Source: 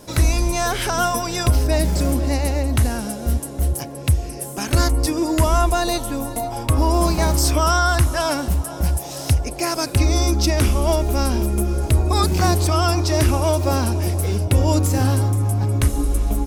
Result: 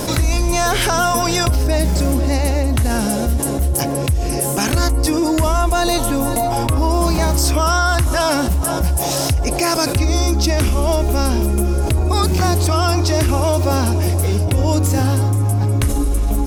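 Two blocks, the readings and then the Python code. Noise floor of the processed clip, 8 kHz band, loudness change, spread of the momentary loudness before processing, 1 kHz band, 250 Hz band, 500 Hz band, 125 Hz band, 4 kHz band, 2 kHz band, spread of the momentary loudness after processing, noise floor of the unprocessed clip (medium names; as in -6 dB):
-20 dBFS, +4.0 dB, +3.0 dB, 6 LU, +3.0 dB, +3.5 dB, +3.5 dB, +2.0 dB, +3.5 dB, +3.5 dB, 2 LU, -32 dBFS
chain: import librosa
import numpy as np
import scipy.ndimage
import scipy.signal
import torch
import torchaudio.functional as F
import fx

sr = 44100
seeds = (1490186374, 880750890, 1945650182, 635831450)

y = fx.env_flatten(x, sr, amount_pct=70)
y = y * librosa.db_to_amplitude(-2.0)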